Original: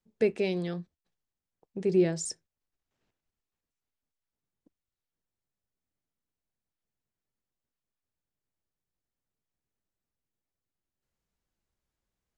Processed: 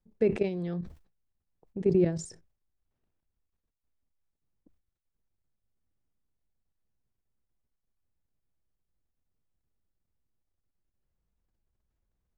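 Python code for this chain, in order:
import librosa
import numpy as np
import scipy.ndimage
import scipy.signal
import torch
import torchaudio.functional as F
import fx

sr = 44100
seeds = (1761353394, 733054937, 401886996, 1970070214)

y = fx.high_shelf(x, sr, hz=2300.0, db=-11.5)
y = fx.level_steps(y, sr, step_db=13)
y = fx.low_shelf(y, sr, hz=110.0, db=11.5)
y = fx.sustainer(y, sr, db_per_s=130.0)
y = y * librosa.db_to_amplitude(3.5)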